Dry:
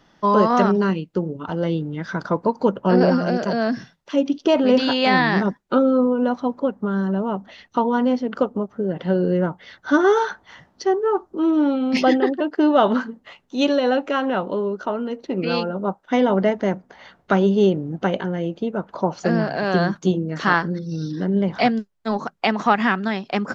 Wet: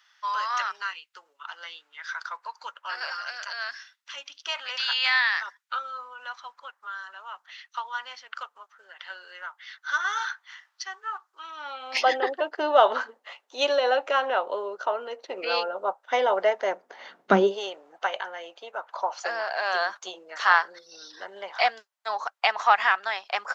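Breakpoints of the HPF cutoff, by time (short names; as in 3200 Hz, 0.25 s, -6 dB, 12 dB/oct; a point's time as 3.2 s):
HPF 24 dB/oct
11.47 s 1300 Hz
12.19 s 540 Hz
16.66 s 540 Hz
17.34 s 190 Hz
17.61 s 730 Hz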